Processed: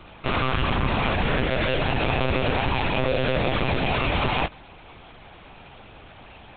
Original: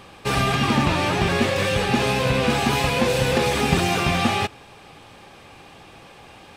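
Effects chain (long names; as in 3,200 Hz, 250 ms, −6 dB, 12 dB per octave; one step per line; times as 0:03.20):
brickwall limiter −13.5 dBFS, peak gain reduction 8.5 dB
one-pitch LPC vocoder at 8 kHz 130 Hz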